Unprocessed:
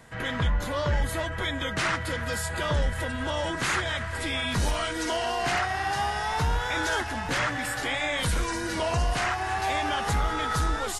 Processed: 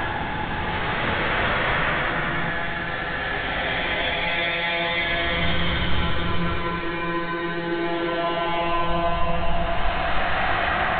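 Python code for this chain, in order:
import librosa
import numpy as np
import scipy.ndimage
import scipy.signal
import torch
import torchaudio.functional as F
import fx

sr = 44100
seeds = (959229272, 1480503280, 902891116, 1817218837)

y = fx.lpc_monotone(x, sr, seeds[0], pitch_hz=170.0, order=16)
y = fx.paulstretch(y, sr, seeds[1], factor=4.9, window_s=0.5, from_s=7.09)
y = F.gain(torch.from_numpy(y), 5.0).numpy()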